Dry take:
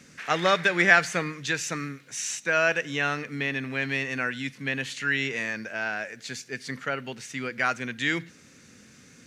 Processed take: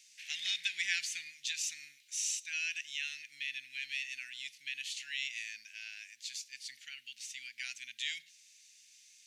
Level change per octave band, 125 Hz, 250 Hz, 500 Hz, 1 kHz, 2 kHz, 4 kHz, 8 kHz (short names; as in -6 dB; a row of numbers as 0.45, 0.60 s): under -40 dB, under -40 dB, under -40 dB, under -35 dB, -14.5 dB, -3.5 dB, -3.0 dB